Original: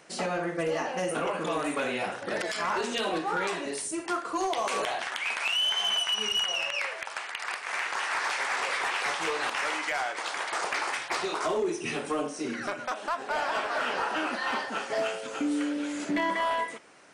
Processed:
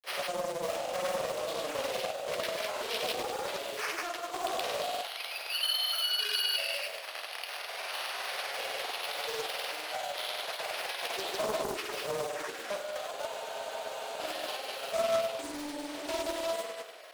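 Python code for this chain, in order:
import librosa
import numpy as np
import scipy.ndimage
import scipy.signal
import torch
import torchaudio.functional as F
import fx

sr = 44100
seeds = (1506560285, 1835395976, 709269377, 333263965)

p1 = fx.law_mismatch(x, sr, coded='mu')
p2 = fx.rider(p1, sr, range_db=5, speed_s=2.0)
p3 = fx.band_shelf(p2, sr, hz=1400.0, db=-15.0, octaves=1.7)
p4 = np.repeat(p3[::6], 6)[:len(p3)]
p5 = p4 + fx.room_flutter(p4, sr, wall_m=8.8, rt60_s=0.75, dry=0)
p6 = fx.granulator(p5, sr, seeds[0], grain_ms=100.0, per_s=20.0, spray_ms=100.0, spread_st=0)
p7 = scipy.signal.sosfilt(scipy.signal.butter(4, 530.0, 'highpass', fs=sr, output='sos'), p6)
p8 = fx.spec_freeze(p7, sr, seeds[1], at_s=13.29, hold_s=0.9)
y = fx.doppler_dist(p8, sr, depth_ms=0.48)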